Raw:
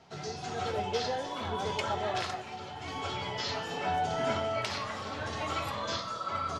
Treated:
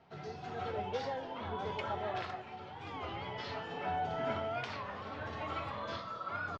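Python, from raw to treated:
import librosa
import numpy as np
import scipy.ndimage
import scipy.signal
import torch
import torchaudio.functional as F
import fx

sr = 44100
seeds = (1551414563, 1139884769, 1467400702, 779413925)

y = scipy.signal.sosfilt(scipy.signal.butter(2, 2800.0, 'lowpass', fs=sr, output='sos'), x)
y = fx.record_warp(y, sr, rpm=33.33, depth_cents=160.0)
y = F.gain(torch.from_numpy(y), -5.0).numpy()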